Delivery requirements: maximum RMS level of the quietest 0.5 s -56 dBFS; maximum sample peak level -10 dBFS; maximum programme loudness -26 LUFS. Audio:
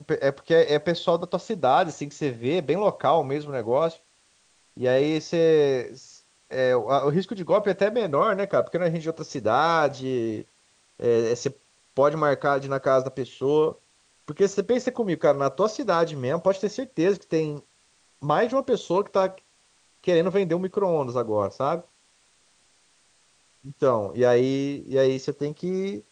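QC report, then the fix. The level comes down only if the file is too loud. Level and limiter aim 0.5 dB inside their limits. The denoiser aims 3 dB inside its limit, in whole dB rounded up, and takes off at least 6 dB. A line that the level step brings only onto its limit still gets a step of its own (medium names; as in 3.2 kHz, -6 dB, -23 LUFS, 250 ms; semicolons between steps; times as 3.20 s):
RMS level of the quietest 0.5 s -63 dBFS: pass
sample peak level -8.0 dBFS: fail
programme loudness -24.0 LUFS: fail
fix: trim -2.5 dB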